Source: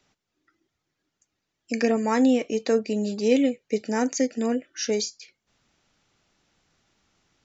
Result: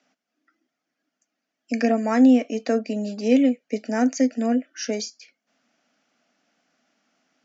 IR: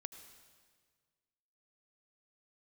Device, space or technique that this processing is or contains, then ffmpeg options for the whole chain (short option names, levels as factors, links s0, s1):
television speaker: -af "highpass=f=210:w=0.5412,highpass=f=210:w=1.3066,equalizer=f=250:t=q:w=4:g=8,equalizer=f=380:t=q:w=4:g=-9,equalizer=f=670:t=q:w=4:g=8,equalizer=f=950:t=q:w=4:g=-6,equalizer=f=1500:t=q:w=4:g=3,equalizer=f=3800:t=q:w=4:g=-7,lowpass=f=6500:w=0.5412,lowpass=f=6500:w=1.3066"